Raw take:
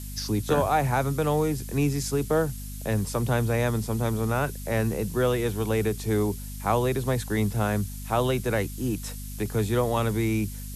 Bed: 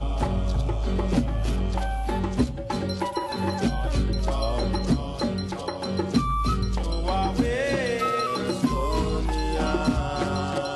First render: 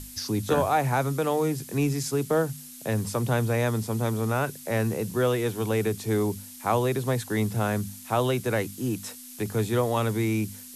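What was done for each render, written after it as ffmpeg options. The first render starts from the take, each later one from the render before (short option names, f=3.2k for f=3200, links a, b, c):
-af "bandreject=f=50:t=h:w=6,bandreject=f=100:t=h:w=6,bandreject=f=150:t=h:w=6,bandreject=f=200:t=h:w=6"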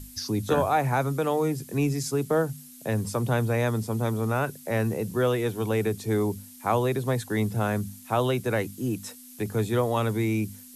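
-af "afftdn=nr=6:nf=-44"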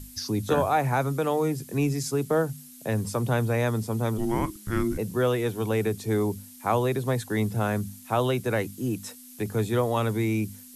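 -filter_complex "[0:a]asplit=3[a][b][c];[a]afade=t=out:st=4.17:d=0.02[d];[b]afreqshift=-460,afade=t=in:st=4.17:d=0.02,afade=t=out:st=4.97:d=0.02[e];[c]afade=t=in:st=4.97:d=0.02[f];[d][e][f]amix=inputs=3:normalize=0"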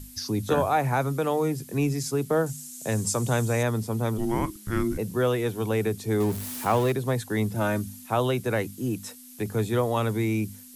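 -filter_complex "[0:a]asettb=1/sr,asplit=3[a][b][c];[a]atrim=end=2.464[d];[b]atrim=start=2.46:end=3.63,asetpts=PTS-STARTPTS,afade=t=in:d=0.004:c=qsin,afade=t=out:st=1.166:d=0.004:c=qsin,equalizer=f=7.2k:t=o:w=0.92:g=14[e];[c]atrim=start=3.626[f];[d][e]acrossfade=d=0.004:c1=hsin:c2=qsin[g];[g][f]acrossfade=d=0.004:c1=qsin:c2=hsin,asettb=1/sr,asplit=3[h][i][j];[h]atrim=end=6.204[k];[i]atrim=start=6.2:end=6.92,asetpts=PTS-STARTPTS,afade=t=in:d=0.004:c=qsin,afade=t=out:st=0.716:d=0.004:c=qsin,aeval=exprs='val(0)+0.5*0.0282*sgn(val(0))':c=same[l];[j]atrim=start=6.916[m];[k][l]acrossfade=d=0.004:c1=hsin:c2=qsin[n];[n][m]acrossfade=d=0.004:c1=qsin:c2=hsin,asettb=1/sr,asplit=3[o][p][q];[o]atrim=end=7.554[r];[p]atrim=start=7.55:end=8.06,asetpts=PTS-STARTPTS,afade=t=in:d=0.004:c=qsin,afade=t=out:st=0.506:d=0.004:c=qsin,aecho=1:1:3.3:0.76,atrim=end_sample=22491[s];[q]atrim=start=8.056[t];[r][s]acrossfade=d=0.004:c1=hsin:c2=qsin[u];[u][t]acrossfade=d=0.004:c1=qsin:c2=hsin"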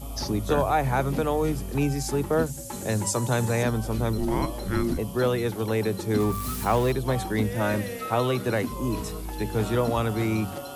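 -filter_complex "[1:a]volume=-9dB[a];[0:a][a]amix=inputs=2:normalize=0"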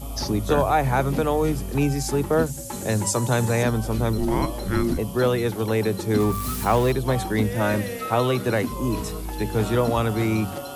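-af "volume=3dB"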